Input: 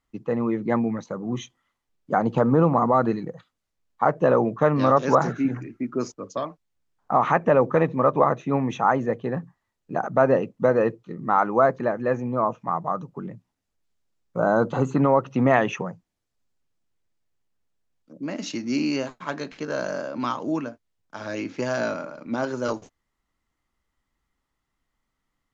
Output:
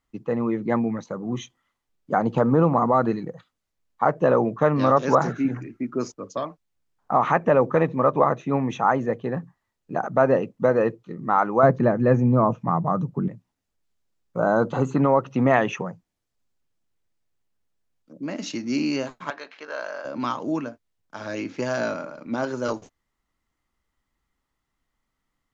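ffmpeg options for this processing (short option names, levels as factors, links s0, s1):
-filter_complex "[0:a]asettb=1/sr,asplit=3[s0][s1][s2];[s0]atrim=end=11.634[s3];[s1]atrim=start=11.63:end=13.28,asetpts=PTS-STARTPTS,afade=t=in:d=0.004:c=qsin,afade=t=out:st=1.646:d=0.004:c=qsin,equalizer=f=120:w=0.42:g=12.5[s4];[s2]atrim=start=13.276[s5];[s3][s4]acrossfade=d=0.004:c1=hsin:c2=qsin[s6];[s6][s5]acrossfade=d=0.004:c1=qsin:c2=hsin,asettb=1/sr,asplit=3[s7][s8][s9];[s7]atrim=end=19.304[s10];[s8]atrim=start=19.3:end=20.05,asetpts=PTS-STARTPTS,afade=t=in:d=0.004:c=qsin,afade=t=out:st=0.746:d=0.004:c=qsin,highpass=710,lowpass=3800[s11];[s9]atrim=start=20.046[s12];[s10][s11]acrossfade=d=0.004:c1=hsin:c2=qsin[s13];[s13][s12]acrossfade=d=0.004:c1=qsin:c2=hsin"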